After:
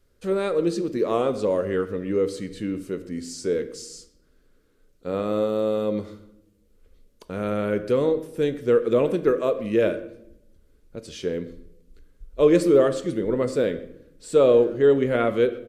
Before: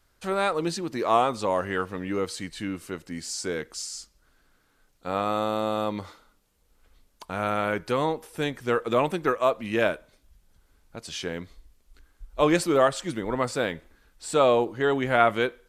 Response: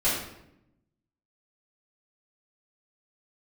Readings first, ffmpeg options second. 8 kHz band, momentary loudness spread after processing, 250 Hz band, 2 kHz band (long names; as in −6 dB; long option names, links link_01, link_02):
can't be measured, 16 LU, +4.5 dB, −5.5 dB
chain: -filter_complex "[0:a]lowshelf=frequency=610:width_type=q:width=3:gain=7,asplit=2[link_01][link_02];[link_02]adelay=130,highpass=300,lowpass=3400,asoftclip=type=hard:threshold=-11dB,volume=-20dB[link_03];[link_01][link_03]amix=inputs=2:normalize=0,asplit=2[link_04][link_05];[1:a]atrim=start_sample=2205[link_06];[link_05][link_06]afir=irnorm=-1:irlink=0,volume=-22dB[link_07];[link_04][link_07]amix=inputs=2:normalize=0,volume=-5.5dB"